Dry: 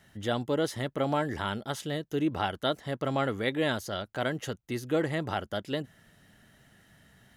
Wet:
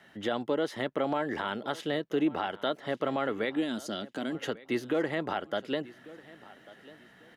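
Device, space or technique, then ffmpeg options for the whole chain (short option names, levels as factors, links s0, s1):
DJ mixer with the lows and highs turned down: -filter_complex "[0:a]acrossover=split=200 4000:gain=0.112 1 0.224[s0][s1][s2];[s0][s1][s2]amix=inputs=3:normalize=0,alimiter=level_in=1.06:limit=0.0631:level=0:latency=1:release=208,volume=0.944,asettb=1/sr,asplit=3[s3][s4][s5];[s3]atrim=end=3.564[s6];[s4]atrim=start=3.56:end=4.35,asetpts=PTS-STARTPTS,afade=t=in:d=0.004:c=qsin,afade=t=out:st=0.786:d=0.004:c=qsin,equalizer=f=125:t=o:w=1:g=-6,equalizer=f=250:t=o:w=1:g=10,equalizer=f=500:t=o:w=1:g=-8,equalizer=f=1000:t=o:w=1:g=-8,equalizer=f=2000:t=o:w=1:g=-7,equalizer=f=8000:t=o:w=1:g=9[s7];[s5]atrim=start=4.346[s8];[s6][s7]acrossfade=d=0.004:c1=hsin:c2=qsin[s9];[s9][s8]acrossfade=d=0.004:c1=qsin:c2=hsin,aecho=1:1:1144|2288:0.1|0.025,volume=1.88"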